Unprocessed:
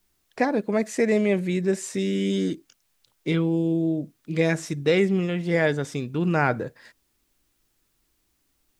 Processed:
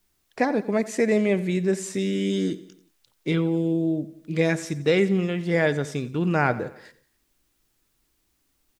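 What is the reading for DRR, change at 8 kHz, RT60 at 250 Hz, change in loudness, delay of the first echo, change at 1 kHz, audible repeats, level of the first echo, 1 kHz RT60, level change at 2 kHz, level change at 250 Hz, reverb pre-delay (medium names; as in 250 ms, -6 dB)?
no reverb, 0.0 dB, no reverb, 0.0 dB, 89 ms, 0.0 dB, 3, -17.5 dB, no reverb, 0.0 dB, 0.0 dB, no reverb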